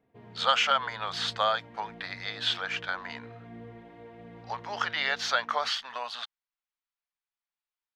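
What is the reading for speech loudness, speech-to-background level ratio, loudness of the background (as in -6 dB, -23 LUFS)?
-29.5 LUFS, 19.0 dB, -48.5 LUFS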